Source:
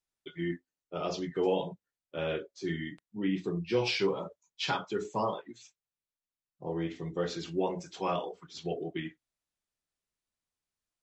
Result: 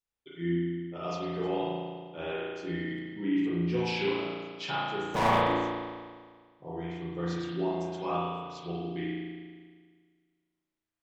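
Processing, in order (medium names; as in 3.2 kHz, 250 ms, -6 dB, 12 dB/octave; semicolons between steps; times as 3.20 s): 5.14–5.54 s: waveshaping leveller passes 5; spring tank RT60 1.7 s, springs 35 ms, chirp 70 ms, DRR -6.5 dB; trim -6 dB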